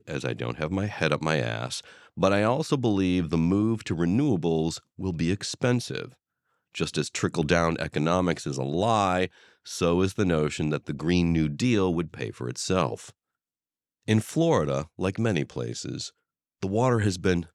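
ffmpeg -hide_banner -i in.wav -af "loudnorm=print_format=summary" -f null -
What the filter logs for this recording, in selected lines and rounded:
Input Integrated:    -26.6 LUFS
Input True Peak:      -8.7 dBTP
Input LRA:             2.5 LU
Input Threshold:     -36.9 LUFS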